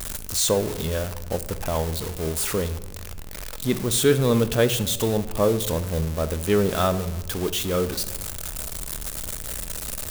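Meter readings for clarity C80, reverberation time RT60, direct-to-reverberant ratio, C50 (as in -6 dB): 16.0 dB, 1.1 s, 11.0 dB, 14.0 dB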